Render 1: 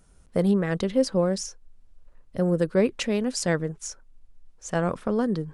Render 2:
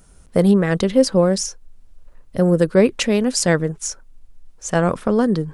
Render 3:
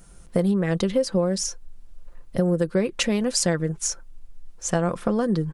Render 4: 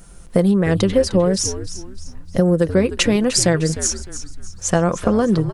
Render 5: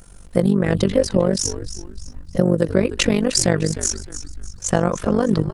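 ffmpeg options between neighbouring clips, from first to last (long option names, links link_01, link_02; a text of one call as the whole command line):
ffmpeg -i in.wav -af "highshelf=frequency=8500:gain=5.5,volume=7.5dB" out.wav
ffmpeg -i in.wav -af "aecho=1:1:5.8:0.4,acompressor=threshold=-19dB:ratio=5" out.wav
ffmpeg -i in.wav -filter_complex "[0:a]asplit=5[link_01][link_02][link_03][link_04][link_05];[link_02]adelay=304,afreqshift=-92,volume=-12.5dB[link_06];[link_03]adelay=608,afreqshift=-184,volume=-21.1dB[link_07];[link_04]adelay=912,afreqshift=-276,volume=-29.8dB[link_08];[link_05]adelay=1216,afreqshift=-368,volume=-38.4dB[link_09];[link_01][link_06][link_07][link_08][link_09]amix=inputs=5:normalize=0,volume=6dB" out.wav
ffmpeg -i in.wav -af "tremolo=f=48:d=0.857,volume=2dB" out.wav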